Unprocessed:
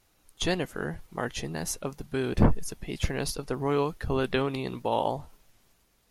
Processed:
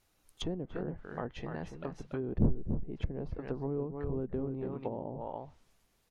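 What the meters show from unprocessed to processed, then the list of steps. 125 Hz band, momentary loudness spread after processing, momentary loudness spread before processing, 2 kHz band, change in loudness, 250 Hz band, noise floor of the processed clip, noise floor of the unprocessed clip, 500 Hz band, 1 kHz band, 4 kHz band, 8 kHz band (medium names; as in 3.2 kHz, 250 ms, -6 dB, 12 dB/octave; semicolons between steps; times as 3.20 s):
-5.0 dB, 10 LU, 10 LU, -15.5 dB, -7.5 dB, -5.5 dB, -73 dBFS, -67 dBFS, -8.0 dB, -12.5 dB, -14.0 dB, under -20 dB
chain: echo from a far wall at 49 m, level -7 dB; low-pass that closes with the level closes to 400 Hz, closed at -24 dBFS; trim -6 dB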